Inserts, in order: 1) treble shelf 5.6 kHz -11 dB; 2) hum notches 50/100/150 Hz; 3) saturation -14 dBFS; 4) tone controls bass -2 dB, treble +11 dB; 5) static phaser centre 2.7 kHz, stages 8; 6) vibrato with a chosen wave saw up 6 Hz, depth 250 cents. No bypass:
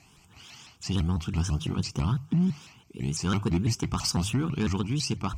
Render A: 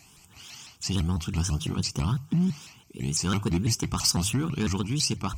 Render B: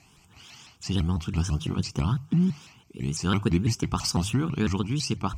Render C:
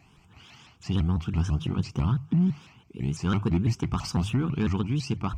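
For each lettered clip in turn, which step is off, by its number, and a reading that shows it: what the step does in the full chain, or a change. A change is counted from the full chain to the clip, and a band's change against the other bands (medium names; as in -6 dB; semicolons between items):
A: 1, 8 kHz band +6.5 dB; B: 3, distortion -16 dB; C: 4, 8 kHz band -9.5 dB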